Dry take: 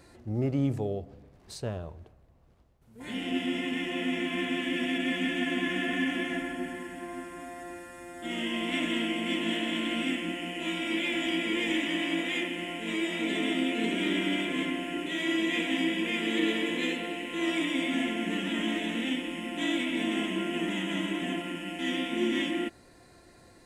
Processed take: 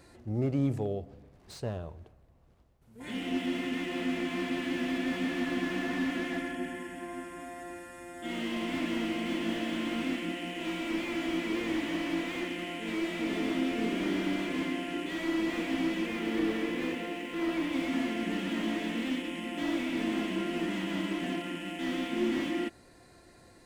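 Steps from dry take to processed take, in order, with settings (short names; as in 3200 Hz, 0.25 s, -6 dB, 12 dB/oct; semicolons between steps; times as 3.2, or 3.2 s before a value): 16.06–17.73 median filter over 9 samples; slew limiter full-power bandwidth 32 Hz; gain -1 dB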